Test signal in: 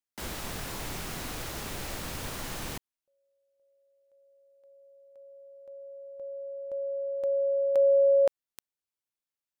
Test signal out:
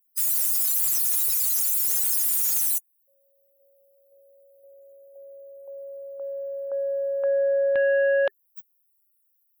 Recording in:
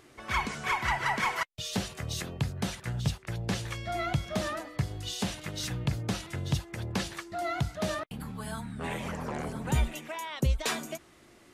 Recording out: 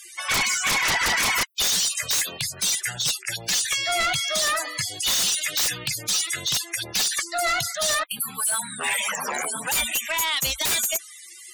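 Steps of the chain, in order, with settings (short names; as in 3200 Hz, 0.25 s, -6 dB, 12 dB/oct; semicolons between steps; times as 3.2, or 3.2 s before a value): differentiator; loudest bins only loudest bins 64; sine folder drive 16 dB, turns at -27 dBFS; gain +8.5 dB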